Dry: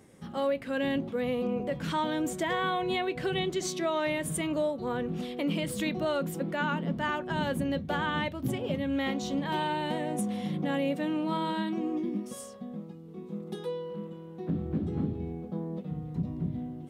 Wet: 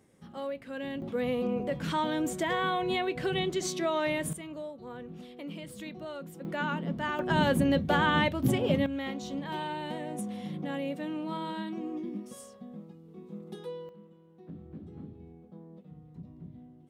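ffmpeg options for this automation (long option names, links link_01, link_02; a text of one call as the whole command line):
ffmpeg -i in.wav -af "asetnsamples=nb_out_samples=441:pad=0,asendcmd='1.02 volume volume 0dB;4.33 volume volume -11dB;6.45 volume volume -2dB;7.19 volume volume 5dB;8.86 volume volume -5dB;13.89 volume volume -14dB',volume=-7.5dB" out.wav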